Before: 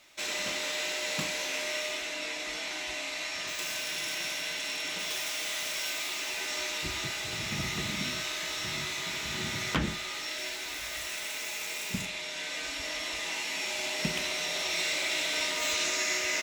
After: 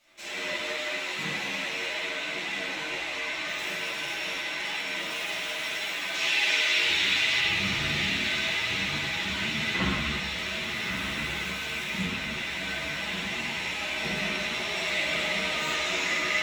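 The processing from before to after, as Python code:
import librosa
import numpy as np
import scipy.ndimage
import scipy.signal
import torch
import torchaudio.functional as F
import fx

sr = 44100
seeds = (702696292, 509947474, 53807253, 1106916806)

y = fx.weighting(x, sr, curve='D', at=(6.14, 7.4))
y = fx.echo_diffused(y, sr, ms=1274, feedback_pct=64, wet_db=-5.5)
y = fx.rev_spring(y, sr, rt60_s=1.6, pass_ms=(41, 52, 58), chirp_ms=40, drr_db=-10.0)
y = fx.ensemble(y, sr)
y = y * 10.0 ** (-4.5 / 20.0)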